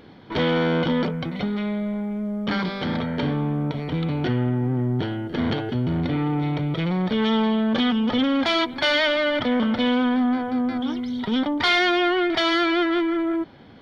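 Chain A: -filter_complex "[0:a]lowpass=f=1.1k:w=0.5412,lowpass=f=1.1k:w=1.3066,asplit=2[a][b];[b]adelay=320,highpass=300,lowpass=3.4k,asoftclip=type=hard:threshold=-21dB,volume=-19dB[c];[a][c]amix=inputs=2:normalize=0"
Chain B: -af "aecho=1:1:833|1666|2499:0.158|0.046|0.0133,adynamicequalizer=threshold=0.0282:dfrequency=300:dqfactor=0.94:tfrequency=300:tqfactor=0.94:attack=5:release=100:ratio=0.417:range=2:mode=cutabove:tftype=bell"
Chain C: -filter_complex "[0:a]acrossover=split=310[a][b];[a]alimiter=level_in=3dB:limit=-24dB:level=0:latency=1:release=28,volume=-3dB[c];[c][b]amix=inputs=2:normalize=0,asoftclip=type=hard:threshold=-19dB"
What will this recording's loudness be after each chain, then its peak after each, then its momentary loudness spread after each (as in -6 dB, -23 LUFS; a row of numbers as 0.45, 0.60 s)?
-24.0, -24.5, -25.5 LUFS; -12.5, -9.5, -19.0 dBFS; 5, 8, 7 LU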